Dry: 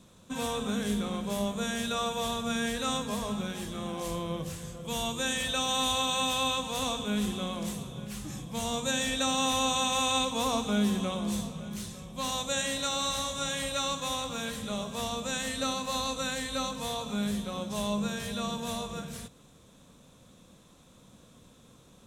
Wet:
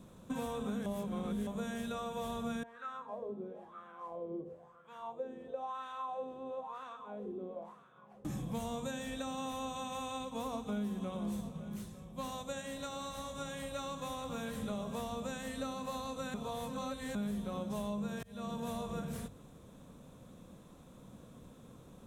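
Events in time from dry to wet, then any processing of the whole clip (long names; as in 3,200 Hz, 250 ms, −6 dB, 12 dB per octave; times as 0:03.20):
0:00.86–0:01.47: reverse
0:02.63–0:08.25: LFO wah 1 Hz 360–1,500 Hz, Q 5.3
0:09.22–0:13.79: expander for the loud parts, over −41 dBFS
0:16.34–0:17.15: reverse
0:18.23–0:18.80: fade in
whole clip: downward compressor, threshold −37 dBFS; parametric band 5,000 Hz −11.5 dB 2.8 octaves; mains-hum notches 50/100 Hz; level +3 dB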